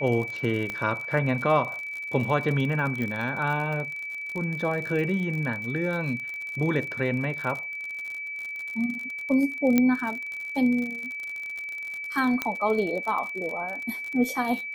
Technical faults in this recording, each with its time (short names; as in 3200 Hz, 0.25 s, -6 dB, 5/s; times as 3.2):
crackle 54/s -31 dBFS
tone 2300 Hz -32 dBFS
0.7 pop -18 dBFS
3.02 pop -19 dBFS
9.78 pop -8 dBFS
12.42 pop -11 dBFS